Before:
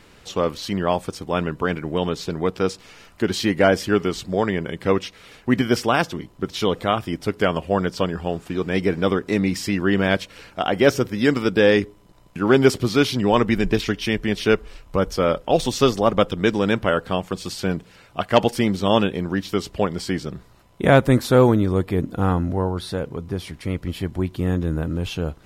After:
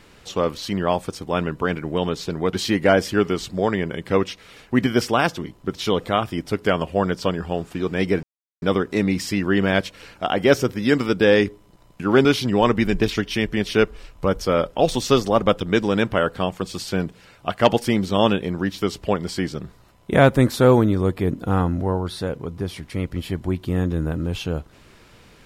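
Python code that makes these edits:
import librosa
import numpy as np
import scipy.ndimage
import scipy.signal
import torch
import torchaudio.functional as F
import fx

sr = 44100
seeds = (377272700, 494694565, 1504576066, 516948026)

y = fx.edit(x, sr, fx.cut(start_s=2.53, length_s=0.75),
    fx.insert_silence(at_s=8.98, length_s=0.39),
    fx.cut(start_s=12.61, length_s=0.35), tone=tone)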